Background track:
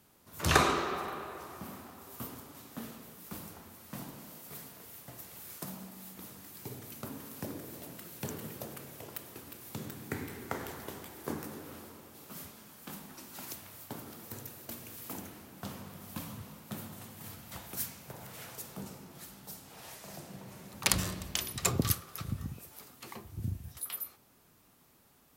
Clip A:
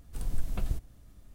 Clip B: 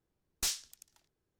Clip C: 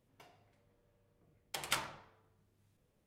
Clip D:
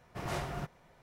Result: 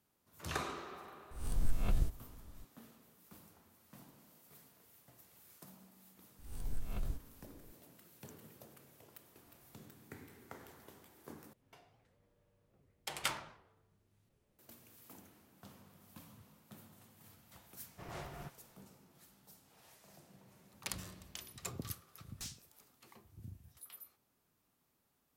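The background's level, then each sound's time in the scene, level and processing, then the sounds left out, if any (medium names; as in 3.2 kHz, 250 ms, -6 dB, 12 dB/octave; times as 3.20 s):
background track -14.5 dB
1.31 s: add A -3 dB + reverse spectral sustain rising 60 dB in 0.48 s
6.39 s: add A -10 dB + reverse spectral sustain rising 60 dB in 0.51 s
9.21 s: add D -18 dB + compression 3:1, threshold -53 dBFS
11.53 s: replace with C -1 dB + warped record 78 rpm, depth 250 cents
17.83 s: add D -10 dB + loudspeaker Doppler distortion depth 0.12 ms
21.98 s: add B -14 dB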